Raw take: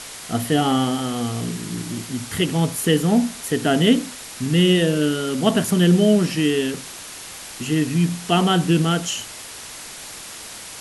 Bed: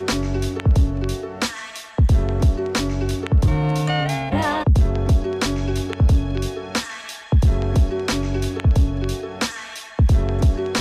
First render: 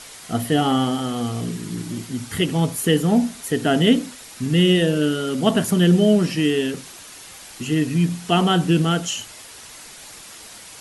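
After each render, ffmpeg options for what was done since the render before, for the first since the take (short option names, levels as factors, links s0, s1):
-af "afftdn=nr=6:nf=-37"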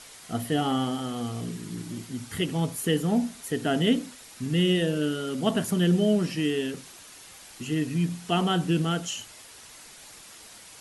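-af "volume=0.447"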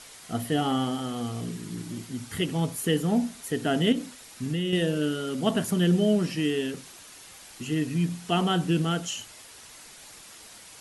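-filter_complex "[0:a]asettb=1/sr,asplit=3[s0][s1][s2];[s0]atrim=end=3.924[s3];[s1]atrim=start=3.92:end=4.73,asetpts=PTS-STARTPTS,afade=t=in:d=0.004:c=qsin,afade=t=out:st=0.806:d=0.004:c=qsin,acompressor=threshold=0.0631:ratio=6:attack=3.2:release=140:knee=1:detection=peak[s4];[s2]atrim=start=4.726[s5];[s3][s4]acrossfade=d=0.004:c1=hsin:c2=qsin[s6];[s6][s5]acrossfade=d=0.004:c1=qsin:c2=hsin"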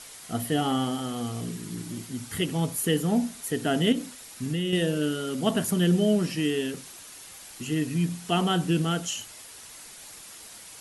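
-af "highshelf=f=10000:g=8.5"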